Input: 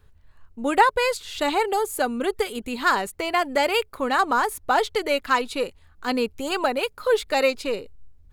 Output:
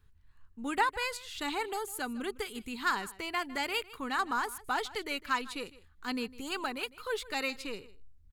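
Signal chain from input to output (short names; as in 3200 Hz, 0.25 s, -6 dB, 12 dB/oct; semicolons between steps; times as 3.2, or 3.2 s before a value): bell 580 Hz -13 dB 0.76 oct; on a send: echo 0.155 s -19 dB; on the sum: gain -8 dB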